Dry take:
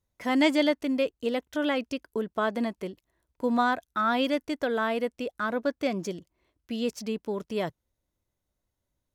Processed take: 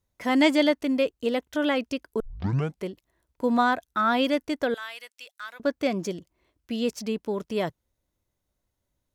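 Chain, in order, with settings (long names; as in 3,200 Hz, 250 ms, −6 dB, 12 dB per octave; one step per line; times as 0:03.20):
0:02.20: tape start 0.64 s
0:04.74–0:05.60: Bessel high-pass filter 2,800 Hz, order 2
level +2.5 dB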